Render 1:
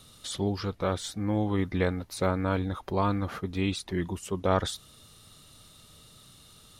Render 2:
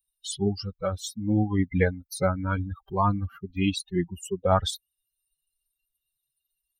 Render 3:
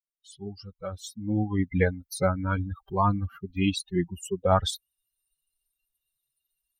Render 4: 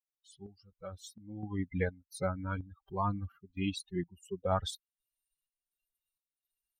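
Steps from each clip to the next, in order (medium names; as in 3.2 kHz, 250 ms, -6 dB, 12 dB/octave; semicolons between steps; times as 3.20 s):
expander on every frequency bin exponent 3; trim +8.5 dB
fade-in on the opening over 1.95 s
square tremolo 1.4 Hz, depth 65%, duty 65%; trim -9 dB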